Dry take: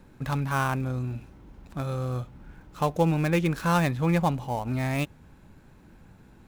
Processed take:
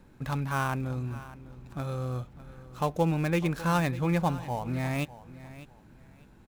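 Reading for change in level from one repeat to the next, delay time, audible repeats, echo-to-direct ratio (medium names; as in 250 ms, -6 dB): -12.5 dB, 601 ms, 2, -16.0 dB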